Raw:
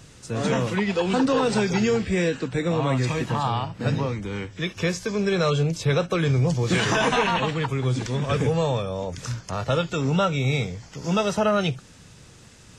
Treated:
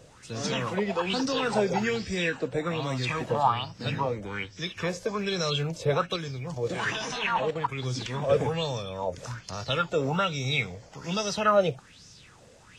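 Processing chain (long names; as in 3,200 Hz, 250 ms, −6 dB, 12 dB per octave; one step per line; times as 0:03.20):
floating-point word with a short mantissa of 6 bits
0:06.16–0:07.78: output level in coarse steps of 9 dB
auto-filter bell 1.2 Hz 510–5,700 Hz +17 dB
level −8 dB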